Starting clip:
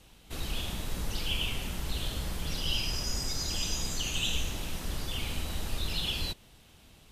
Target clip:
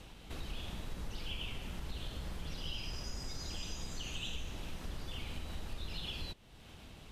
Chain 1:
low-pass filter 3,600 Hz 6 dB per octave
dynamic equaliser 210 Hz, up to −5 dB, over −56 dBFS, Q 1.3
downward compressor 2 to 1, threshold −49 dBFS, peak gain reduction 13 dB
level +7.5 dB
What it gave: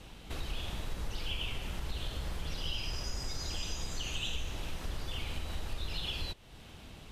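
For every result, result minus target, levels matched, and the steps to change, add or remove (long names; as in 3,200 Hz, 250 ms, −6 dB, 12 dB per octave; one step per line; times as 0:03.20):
downward compressor: peak gain reduction −5 dB; 250 Hz band −3.0 dB
change: downward compressor 2 to 1, threshold −58.5 dBFS, peak gain reduction 18 dB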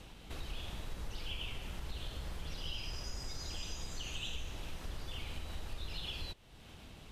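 250 Hz band −3.0 dB
remove: dynamic equaliser 210 Hz, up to −5 dB, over −56 dBFS, Q 1.3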